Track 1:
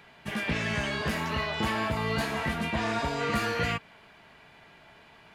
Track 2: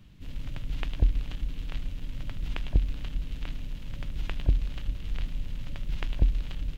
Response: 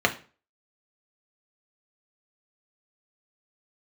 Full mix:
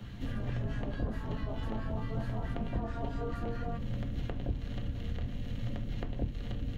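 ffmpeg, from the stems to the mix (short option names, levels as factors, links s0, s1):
-filter_complex "[0:a]acrossover=split=1100[s0][s1];[s0]aeval=exprs='val(0)*(1-1/2+1/2*cos(2*PI*4.6*n/s))':c=same[s2];[s1]aeval=exprs='val(0)*(1-1/2-1/2*cos(2*PI*4.6*n/s))':c=same[s3];[s2][s3]amix=inputs=2:normalize=0,equalizer=f=1200:w=0.92:g=6.5,volume=0.473,asplit=2[s4][s5];[s5]volume=0.1[s6];[1:a]acompressor=threshold=0.02:ratio=2.5,volume=1.06,asplit=2[s7][s8];[s8]volume=0.447[s9];[2:a]atrim=start_sample=2205[s10];[s6][s9]amix=inputs=2:normalize=0[s11];[s11][s10]afir=irnorm=-1:irlink=0[s12];[s4][s7][s12]amix=inputs=3:normalize=0,acrossover=split=81|730[s13][s14][s15];[s13]acompressor=threshold=0.00794:ratio=4[s16];[s14]acompressor=threshold=0.0158:ratio=4[s17];[s15]acompressor=threshold=0.00224:ratio=4[s18];[s16][s17][s18]amix=inputs=3:normalize=0,lowshelf=f=230:g=5"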